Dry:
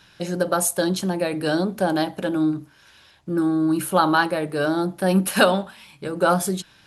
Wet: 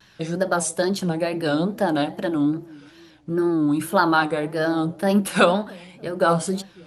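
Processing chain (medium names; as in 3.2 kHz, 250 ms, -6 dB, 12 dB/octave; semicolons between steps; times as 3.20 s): treble shelf 7.4 kHz -6.5 dB; feedback echo behind a low-pass 288 ms, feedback 46%, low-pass 520 Hz, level -21.5 dB; wow and flutter 140 cents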